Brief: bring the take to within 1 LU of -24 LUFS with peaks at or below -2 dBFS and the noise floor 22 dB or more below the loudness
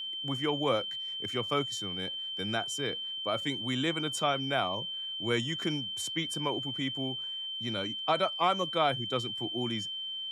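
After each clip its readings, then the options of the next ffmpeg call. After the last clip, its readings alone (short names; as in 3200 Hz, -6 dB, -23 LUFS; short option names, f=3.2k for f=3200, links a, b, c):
steady tone 3100 Hz; tone level -35 dBFS; loudness -31.5 LUFS; peak -14.0 dBFS; loudness target -24.0 LUFS
-> -af "bandreject=f=3.1k:w=30"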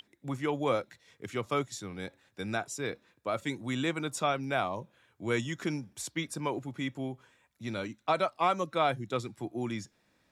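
steady tone none; loudness -33.5 LUFS; peak -15.0 dBFS; loudness target -24.0 LUFS
-> -af "volume=9.5dB"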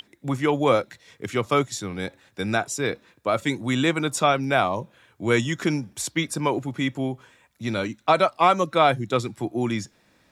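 loudness -24.0 LUFS; peak -5.5 dBFS; noise floor -62 dBFS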